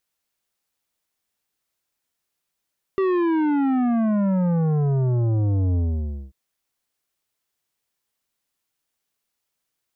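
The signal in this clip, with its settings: sub drop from 390 Hz, over 3.34 s, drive 11 dB, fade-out 0.56 s, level -19 dB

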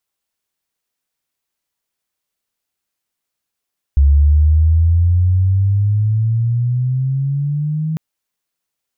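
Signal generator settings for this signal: sweep logarithmic 69 Hz -> 160 Hz -6.5 dBFS -> -16.5 dBFS 4.00 s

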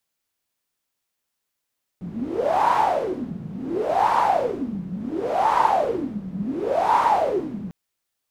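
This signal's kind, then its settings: wind-like swept noise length 5.70 s, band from 180 Hz, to 950 Hz, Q 11, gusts 4, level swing 13.5 dB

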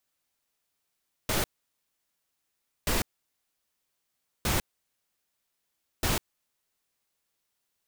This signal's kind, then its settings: noise bursts pink, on 0.15 s, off 1.43 s, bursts 4, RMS -26.5 dBFS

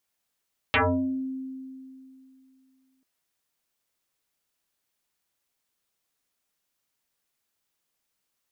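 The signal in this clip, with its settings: FM tone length 2.29 s, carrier 263 Hz, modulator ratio 1.35, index 9.6, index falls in 0.54 s exponential, decay 2.72 s, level -17.5 dB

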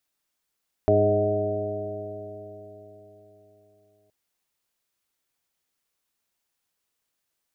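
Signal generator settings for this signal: stretched partials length 3.22 s, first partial 102 Hz, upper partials -7/-3/2.5/-13.5/5/-8 dB, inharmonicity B 0.0017, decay 4.06 s, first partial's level -23 dB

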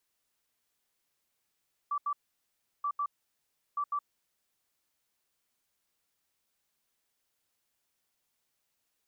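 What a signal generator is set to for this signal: beep pattern sine 1.16 kHz, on 0.07 s, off 0.08 s, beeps 2, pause 0.71 s, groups 3, -28.5 dBFS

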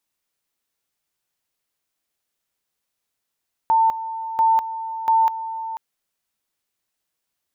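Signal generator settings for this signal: two-level tone 897 Hz -13 dBFS, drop 13 dB, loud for 0.20 s, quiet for 0.49 s, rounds 3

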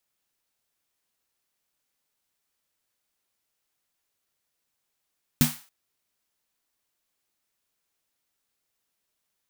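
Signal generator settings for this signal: snare drum length 0.28 s, tones 150 Hz, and 240 Hz, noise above 680 Hz, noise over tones -6 dB, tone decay 0.20 s, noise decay 0.39 s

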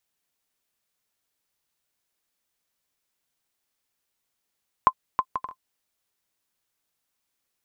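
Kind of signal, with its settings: bouncing ball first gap 0.32 s, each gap 0.52, 1.04 kHz, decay 61 ms -5 dBFS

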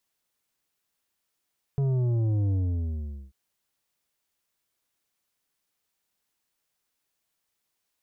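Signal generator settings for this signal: sub drop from 140 Hz, over 1.54 s, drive 8.5 dB, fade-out 0.81 s, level -23 dB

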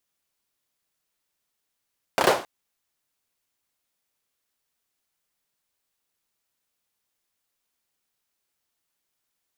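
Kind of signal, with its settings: hand clap length 0.27 s, apart 30 ms, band 570 Hz, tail 0.39 s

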